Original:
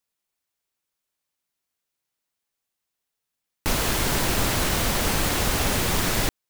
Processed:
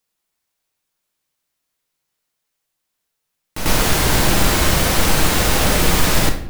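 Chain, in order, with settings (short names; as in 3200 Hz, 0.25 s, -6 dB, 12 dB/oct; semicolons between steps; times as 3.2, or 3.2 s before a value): on a send: reverse echo 95 ms -8.5 dB; on the sum: shoebox room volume 140 m³, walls mixed, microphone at 0.54 m; gain +5 dB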